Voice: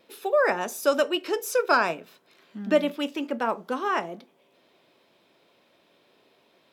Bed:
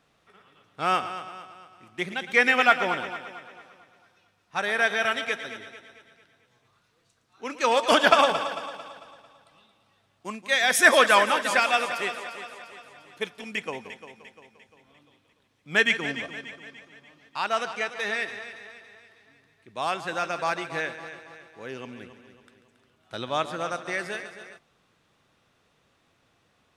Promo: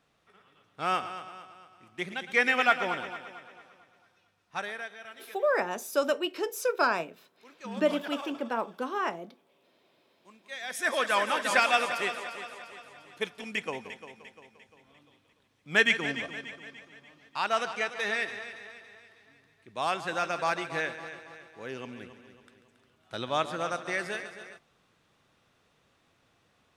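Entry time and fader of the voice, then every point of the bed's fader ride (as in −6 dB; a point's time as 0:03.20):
5.10 s, −4.5 dB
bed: 0:04.55 −4.5 dB
0:04.94 −21 dB
0:10.33 −21 dB
0:11.55 −1.5 dB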